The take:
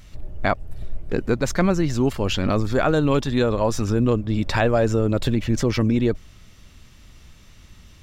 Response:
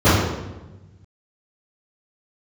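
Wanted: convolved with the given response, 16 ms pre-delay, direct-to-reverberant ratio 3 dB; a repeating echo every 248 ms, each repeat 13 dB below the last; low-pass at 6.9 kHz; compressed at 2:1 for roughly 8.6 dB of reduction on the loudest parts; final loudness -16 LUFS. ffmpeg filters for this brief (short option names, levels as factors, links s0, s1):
-filter_complex "[0:a]lowpass=6900,acompressor=threshold=0.0282:ratio=2,aecho=1:1:248|496|744:0.224|0.0493|0.0108,asplit=2[s0][s1];[1:a]atrim=start_sample=2205,adelay=16[s2];[s1][s2]afir=irnorm=-1:irlink=0,volume=0.0335[s3];[s0][s3]amix=inputs=2:normalize=0,volume=2.37"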